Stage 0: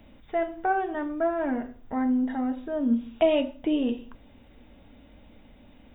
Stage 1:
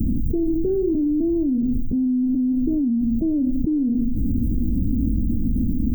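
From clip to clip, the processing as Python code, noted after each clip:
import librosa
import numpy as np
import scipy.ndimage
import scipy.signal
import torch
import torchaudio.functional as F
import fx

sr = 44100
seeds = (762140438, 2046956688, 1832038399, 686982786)

y = scipy.signal.sosfilt(scipy.signal.cheby2(4, 60, [780.0, 3400.0], 'bandstop', fs=sr, output='sos'), x)
y = fx.env_flatten(y, sr, amount_pct=100)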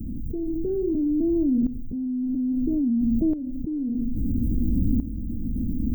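y = fx.tremolo_shape(x, sr, shape='saw_up', hz=0.6, depth_pct=75)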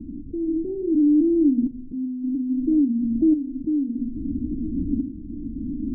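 y = fx.spec_quant(x, sr, step_db=15)
y = fx.formant_cascade(y, sr, vowel='u')
y = fx.hum_notches(y, sr, base_hz=50, count=5)
y = y * 10.0 ** (7.0 / 20.0)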